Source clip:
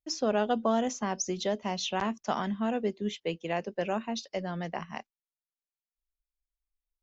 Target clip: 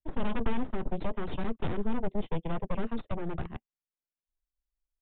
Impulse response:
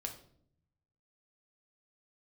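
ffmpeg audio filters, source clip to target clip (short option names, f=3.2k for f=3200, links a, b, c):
-filter_complex "[0:a]aeval=exprs='0.178*(cos(1*acos(clip(val(0)/0.178,-1,1)))-cos(1*PI/2))+0.0891*(cos(3*acos(clip(val(0)/0.178,-1,1)))-cos(3*PI/2))+0.0282*(cos(8*acos(clip(val(0)/0.178,-1,1)))-cos(8*PI/2))':c=same,atempo=1.4,tiltshelf=f=970:g=7.5,acrossover=split=160[a][b];[b]asoftclip=type=tanh:threshold=-29dB[c];[a][c]amix=inputs=2:normalize=0,aresample=8000,aresample=44100"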